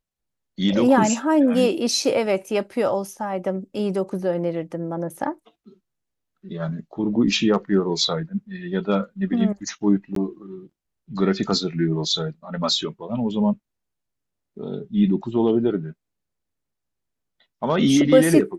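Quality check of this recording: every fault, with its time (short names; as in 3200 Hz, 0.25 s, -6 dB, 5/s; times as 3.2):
10.15–10.16 gap 13 ms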